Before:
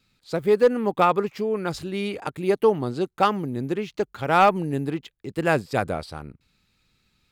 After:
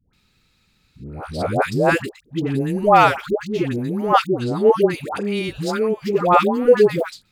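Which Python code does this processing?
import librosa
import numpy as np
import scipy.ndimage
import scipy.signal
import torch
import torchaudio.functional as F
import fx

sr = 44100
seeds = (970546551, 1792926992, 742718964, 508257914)

y = np.flip(x).copy()
y = fx.dispersion(y, sr, late='highs', ms=135.0, hz=710.0)
y = y * librosa.db_to_amplitude(5.0)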